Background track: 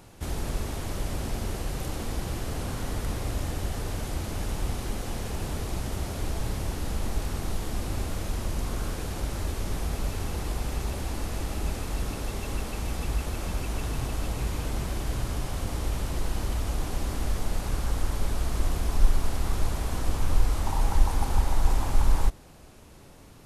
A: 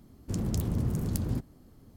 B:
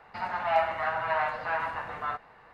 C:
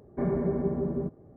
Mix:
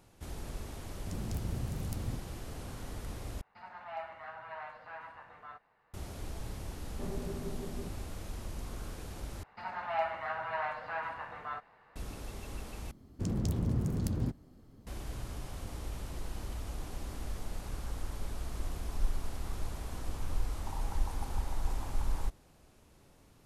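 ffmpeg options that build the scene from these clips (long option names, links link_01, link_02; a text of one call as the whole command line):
ffmpeg -i bed.wav -i cue0.wav -i cue1.wav -i cue2.wav -filter_complex "[1:a]asplit=2[link_01][link_02];[2:a]asplit=2[link_03][link_04];[0:a]volume=-11dB[link_05];[link_01]asubboost=boost=3.5:cutoff=160[link_06];[link_02]highshelf=frequency=9500:gain=-9.5[link_07];[link_05]asplit=4[link_08][link_09][link_10][link_11];[link_08]atrim=end=3.414[link_12];[link_03]atrim=end=2.53,asetpts=PTS-STARTPTS,volume=-16.5dB[link_13];[link_09]atrim=start=5.936:end=9.434[link_14];[link_04]atrim=end=2.53,asetpts=PTS-STARTPTS,volume=-7.5dB[link_15];[link_10]atrim=start=11.956:end=12.914[link_16];[link_07]atrim=end=1.96,asetpts=PTS-STARTPTS,volume=-2dB[link_17];[link_11]atrim=start=14.866[link_18];[link_06]atrim=end=1.96,asetpts=PTS-STARTPTS,volume=-10.5dB,afade=type=in:duration=0.004:curve=hsin,afade=type=out:start_time=1.956:duration=0.004:curve=hsin,adelay=770[link_19];[3:a]atrim=end=1.36,asetpts=PTS-STARTPTS,volume=-13.5dB,afade=type=in:duration=0.004:curve=hsin,afade=type=out:start_time=1.356:duration=0.004:curve=hsin,adelay=6810[link_20];[link_12][link_13]acrossfade=duration=0.004:curve1=hsin:curve2=hsin[link_21];[link_21][link_14]acrossfade=duration=0.004:curve1=hsin:curve2=hsin[link_22];[link_22][link_15]acrossfade=duration=0.004:curve1=hsin:curve2=hsin[link_23];[link_23][link_16]acrossfade=duration=0.004:curve1=hsin:curve2=hsin[link_24];[link_24][link_17]acrossfade=duration=0.004:curve1=hsin:curve2=hsin[link_25];[link_25][link_18]acrossfade=duration=0.004:curve1=hsin:curve2=hsin[link_26];[link_26][link_19][link_20]amix=inputs=3:normalize=0" out.wav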